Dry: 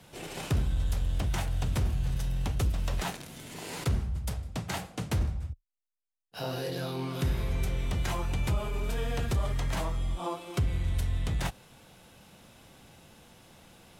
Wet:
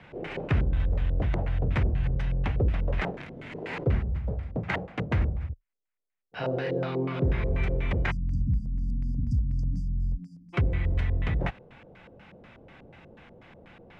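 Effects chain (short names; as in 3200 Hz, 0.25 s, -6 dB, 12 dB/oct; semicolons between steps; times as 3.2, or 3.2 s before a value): spectral delete 8.11–10.54, 280–4600 Hz; LFO low-pass square 4.1 Hz 500–2100 Hz; gain +3 dB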